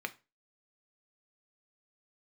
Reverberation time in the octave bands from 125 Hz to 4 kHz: 0.30 s, 0.30 s, 0.30 s, 0.25 s, 0.25 s, 0.25 s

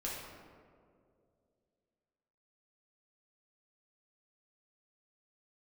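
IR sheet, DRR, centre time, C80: -6.0 dB, 96 ms, 2.0 dB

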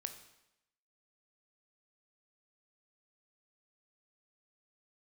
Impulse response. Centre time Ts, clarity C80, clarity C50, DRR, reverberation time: 14 ms, 12.5 dB, 10.0 dB, 7.0 dB, 0.85 s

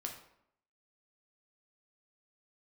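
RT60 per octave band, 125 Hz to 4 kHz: 0.70 s, 0.80 s, 0.75 s, 0.70 s, 0.60 s, 0.50 s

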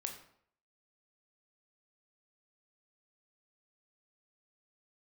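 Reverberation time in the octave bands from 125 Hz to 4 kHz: 0.60 s, 0.60 s, 0.65 s, 0.65 s, 0.55 s, 0.45 s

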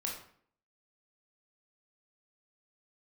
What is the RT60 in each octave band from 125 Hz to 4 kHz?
0.60 s, 0.65 s, 0.60 s, 0.55 s, 0.50 s, 0.40 s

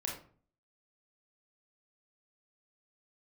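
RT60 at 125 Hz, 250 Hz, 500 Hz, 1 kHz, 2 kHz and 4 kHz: 0.65 s, 0.60 s, 0.50 s, 0.45 s, 0.35 s, 0.30 s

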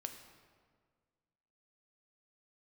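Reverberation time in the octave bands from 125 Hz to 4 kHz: 2.1 s, 1.9 s, 1.8 s, 1.6 s, 1.4 s, 1.1 s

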